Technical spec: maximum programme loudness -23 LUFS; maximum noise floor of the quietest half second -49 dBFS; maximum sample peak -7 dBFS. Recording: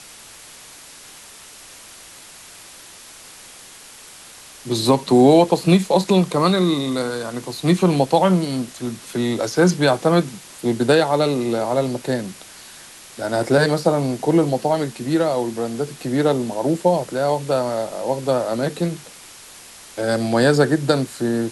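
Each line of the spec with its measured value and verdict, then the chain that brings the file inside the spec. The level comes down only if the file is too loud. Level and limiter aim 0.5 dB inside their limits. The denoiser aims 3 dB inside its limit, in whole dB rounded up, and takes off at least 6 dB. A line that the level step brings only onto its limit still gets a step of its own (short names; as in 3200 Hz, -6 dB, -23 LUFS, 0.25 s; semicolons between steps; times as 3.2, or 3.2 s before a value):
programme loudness -19.0 LUFS: fail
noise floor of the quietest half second -42 dBFS: fail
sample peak -3.0 dBFS: fail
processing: denoiser 6 dB, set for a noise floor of -42 dBFS; gain -4.5 dB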